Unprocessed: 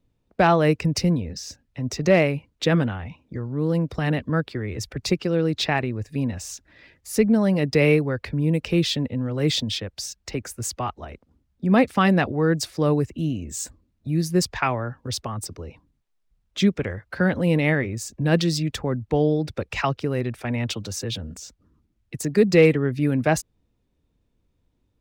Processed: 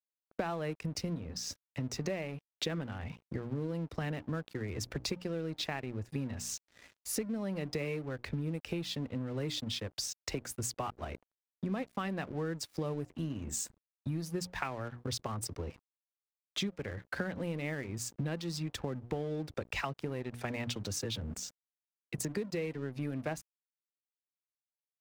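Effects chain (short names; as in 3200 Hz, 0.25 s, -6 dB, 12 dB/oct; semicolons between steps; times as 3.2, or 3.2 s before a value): notches 60/120/180/240/300 Hz; compressor 12:1, threshold -32 dBFS, peak gain reduction 21.5 dB; crossover distortion -51 dBFS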